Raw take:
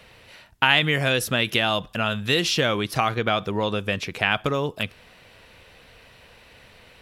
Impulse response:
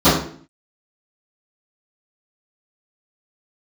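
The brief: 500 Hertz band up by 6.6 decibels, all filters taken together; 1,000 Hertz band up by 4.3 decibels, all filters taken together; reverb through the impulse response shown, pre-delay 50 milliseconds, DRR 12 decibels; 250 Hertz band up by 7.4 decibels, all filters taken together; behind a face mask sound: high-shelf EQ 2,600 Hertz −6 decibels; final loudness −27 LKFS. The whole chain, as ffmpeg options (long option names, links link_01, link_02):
-filter_complex "[0:a]equalizer=frequency=250:width_type=o:gain=8,equalizer=frequency=500:width_type=o:gain=5,equalizer=frequency=1000:width_type=o:gain=4.5,asplit=2[link_01][link_02];[1:a]atrim=start_sample=2205,adelay=50[link_03];[link_02][link_03]afir=irnorm=-1:irlink=0,volume=-38dB[link_04];[link_01][link_04]amix=inputs=2:normalize=0,highshelf=frequency=2600:gain=-6,volume=-8dB"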